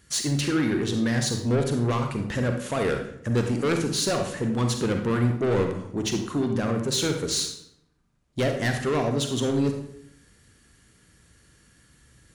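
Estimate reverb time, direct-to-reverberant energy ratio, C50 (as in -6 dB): 0.75 s, 4.0 dB, 5.5 dB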